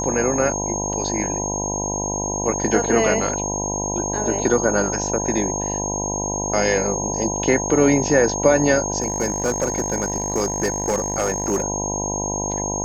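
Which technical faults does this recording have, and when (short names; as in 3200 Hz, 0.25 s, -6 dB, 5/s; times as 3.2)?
buzz 50 Hz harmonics 20 -27 dBFS
tone 6500 Hz -25 dBFS
9–11.64 clipped -15.5 dBFS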